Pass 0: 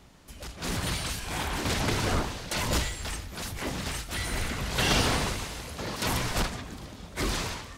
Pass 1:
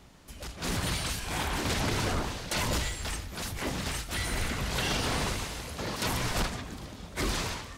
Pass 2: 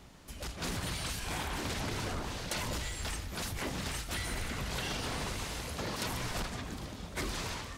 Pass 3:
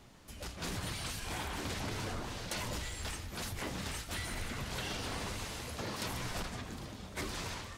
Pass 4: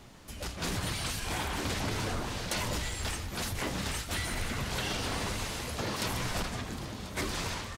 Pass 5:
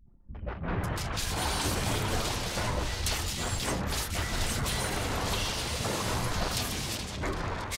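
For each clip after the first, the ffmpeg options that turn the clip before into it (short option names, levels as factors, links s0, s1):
-af "alimiter=limit=0.1:level=0:latency=1:release=88"
-af "acompressor=threshold=0.0224:ratio=6"
-af "flanger=delay=8.3:depth=2.5:regen=-55:speed=0.88:shape=triangular,volume=1.19"
-af "aecho=1:1:1039:0.158,volume=1.88"
-filter_complex "[0:a]anlmdn=0.1,acrossover=split=250|2100[s0][s1][s2];[s1]adelay=60[s3];[s2]adelay=550[s4];[s0][s3][s4]amix=inputs=3:normalize=0,volume=1.58"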